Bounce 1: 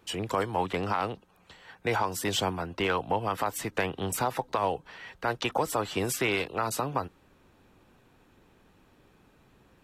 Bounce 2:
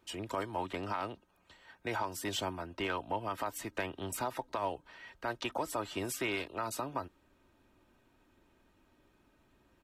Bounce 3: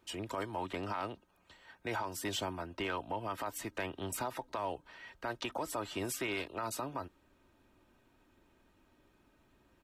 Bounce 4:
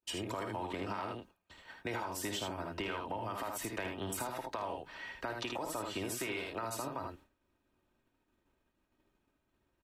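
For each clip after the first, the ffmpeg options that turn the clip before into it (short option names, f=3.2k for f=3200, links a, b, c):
-af "aecho=1:1:3.2:0.42,volume=-8dB"
-af "alimiter=level_in=2.5dB:limit=-24dB:level=0:latency=1:release=33,volume=-2.5dB"
-af "aecho=1:1:53|78:0.376|0.562,acompressor=threshold=-40dB:ratio=4,agate=range=-33dB:threshold=-55dB:ratio=3:detection=peak,volume=4dB"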